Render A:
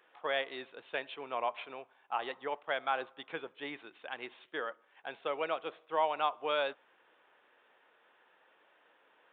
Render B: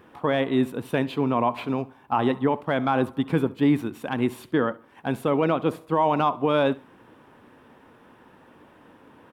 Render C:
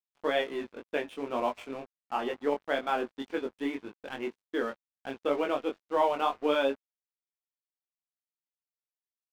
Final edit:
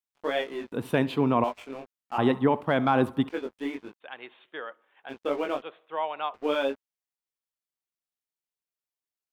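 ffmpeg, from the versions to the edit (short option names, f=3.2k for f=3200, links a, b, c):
-filter_complex "[1:a]asplit=2[a][b];[0:a]asplit=2[c][d];[2:a]asplit=5[e][f][g][h][i];[e]atrim=end=0.722[j];[a]atrim=start=0.718:end=1.442[k];[f]atrim=start=1.438:end=2.182[l];[b]atrim=start=2.178:end=3.292[m];[g]atrim=start=3.288:end=4.04[n];[c]atrim=start=4:end=5.12[o];[h]atrim=start=5.08:end=5.622[p];[d]atrim=start=5.618:end=6.342[q];[i]atrim=start=6.338[r];[j][k]acrossfade=d=0.004:c1=hsin:c2=hsin[s];[s][l]acrossfade=d=0.004:c1=hsin:c2=hsin[t];[t][m]acrossfade=d=0.004:c1=hsin:c2=hsin[u];[u][n]acrossfade=d=0.004:c1=hsin:c2=hsin[v];[v][o]acrossfade=d=0.04:c1=tri:c2=tri[w];[w][p]acrossfade=d=0.04:c1=tri:c2=tri[x];[x][q]acrossfade=d=0.004:c1=hsin:c2=hsin[y];[y][r]acrossfade=d=0.004:c1=hsin:c2=hsin"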